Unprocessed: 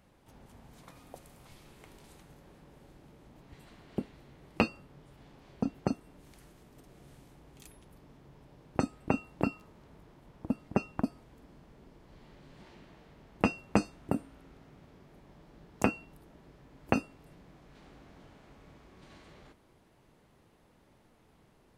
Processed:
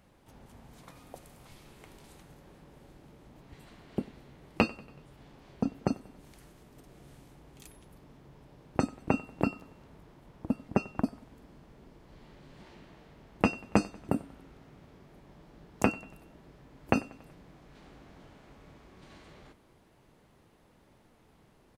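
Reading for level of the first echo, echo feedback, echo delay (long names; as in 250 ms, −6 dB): −22.0 dB, 55%, 94 ms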